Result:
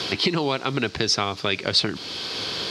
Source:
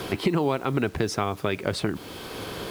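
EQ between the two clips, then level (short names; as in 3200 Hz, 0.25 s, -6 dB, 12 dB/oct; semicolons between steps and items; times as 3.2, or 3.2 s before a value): HPF 80 Hz; synth low-pass 4700 Hz, resonance Q 2.6; high shelf 2200 Hz +11 dB; -1.0 dB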